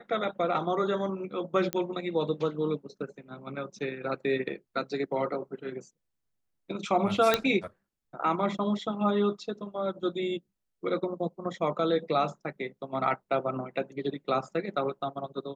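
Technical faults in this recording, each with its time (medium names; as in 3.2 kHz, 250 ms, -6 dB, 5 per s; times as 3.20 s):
1.73 s: pop -13 dBFS
7.34 s: pop -8 dBFS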